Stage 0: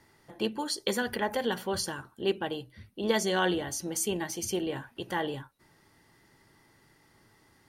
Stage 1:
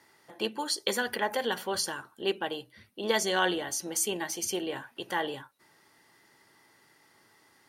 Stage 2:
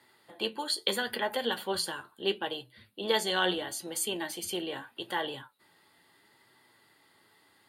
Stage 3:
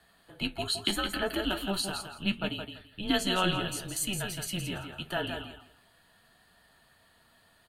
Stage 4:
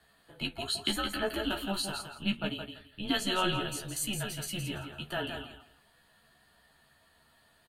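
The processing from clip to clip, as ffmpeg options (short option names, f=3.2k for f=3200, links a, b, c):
-af "highpass=f=490:p=1,volume=2.5dB"
-filter_complex "[0:a]flanger=delay=7.9:depth=3.8:regen=61:speed=0.76:shape=sinusoidal,acrossover=split=320|5000[a][b][c];[b]aexciter=amount=1.9:drive=4.9:freq=3.2k[d];[a][d][c]amix=inputs=3:normalize=0,volume=2.5dB"
-af "afreqshift=-190,aecho=1:1:167|334|501:0.447|0.0893|0.0179"
-filter_complex "[0:a]asplit=2[a][b];[b]adelay=14,volume=-5dB[c];[a][c]amix=inputs=2:normalize=0,volume=-3dB"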